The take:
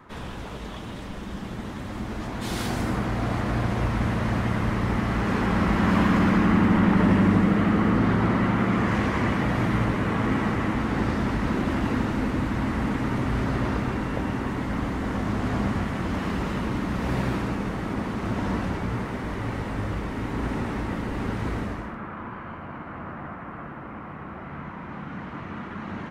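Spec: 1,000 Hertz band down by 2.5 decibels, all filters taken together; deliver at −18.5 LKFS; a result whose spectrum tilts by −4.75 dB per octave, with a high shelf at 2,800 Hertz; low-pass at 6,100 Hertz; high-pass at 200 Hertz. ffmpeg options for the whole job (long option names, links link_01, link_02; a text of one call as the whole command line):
ffmpeg -i in.wav -af "highpass=200,lowpass=6100,equalizer=frequency=1000:width_type=o:gain=-4,highshelf=frequency=2800:gain=5.5,volume=10dB" out.wav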